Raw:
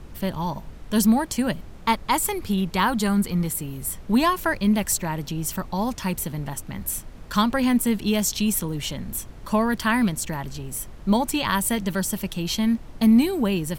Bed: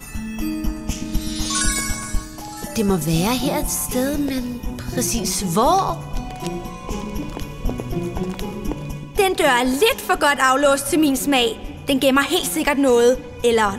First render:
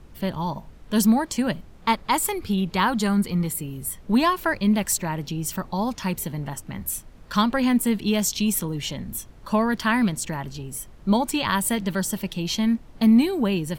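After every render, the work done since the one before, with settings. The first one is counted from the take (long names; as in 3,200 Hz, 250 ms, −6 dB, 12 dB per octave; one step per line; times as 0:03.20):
noise reduction from a noise print 6 dB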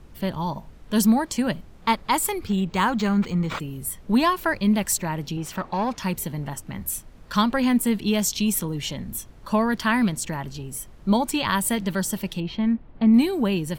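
0:02.47–0:03.60: linearly interpolated sample-rate reduction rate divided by 4×
0:05.37–0:05.97: mid-hump overdrive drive 14 dB, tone 1,600 Hz, clips at −16 dBFS
0:12.40–0:13.14: high-frequency loss of the air 410 metres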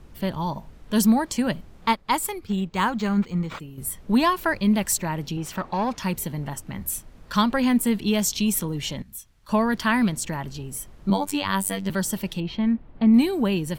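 0:01.91–0:03.78: expander for the loud parts, over −40 dBFS
0:09.02–0:09.49: guitar amp tone stack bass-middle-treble 5-5-5
0:11.10–0:11.90: phases set to zero 96.8 Hz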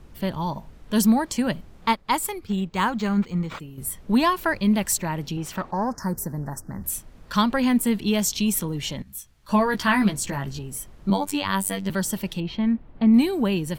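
0:05.71–0:06.84: Chebyshev band-stop filter 1,700–5,200 Hz, order 3
0:09.05–0:10.59: double-tracking delay 15 ms −3.5 dB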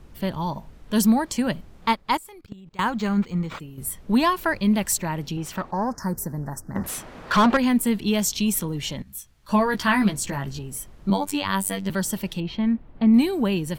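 0:02.17–0:02.86: output level in coarse steps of 22 dB
0:06.75–0:07.57: mid-hump overdrive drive 26 dB, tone 1,500 Hz, clips at −9 dBFS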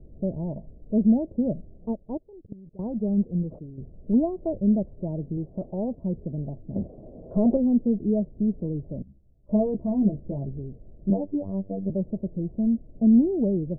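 Chebyshev low-pass filter 650 Hz, order 5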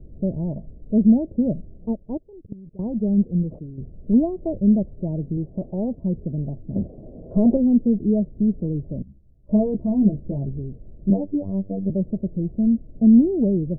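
tilt shelving filter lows +5.5 dB, about 710 Hz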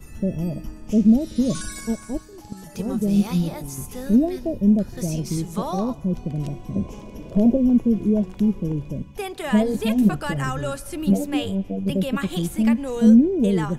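mix in bed −13.5 dB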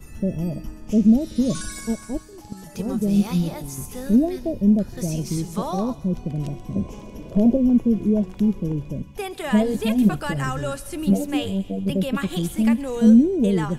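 delay with a high-pass on its return 132 ms, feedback 47%, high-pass 3,000 Hz, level −12 dB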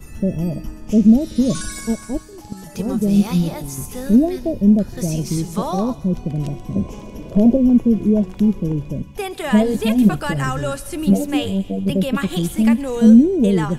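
level +4 dB
brickwall limiter −2 dBFS, peak gain reduction 1 dB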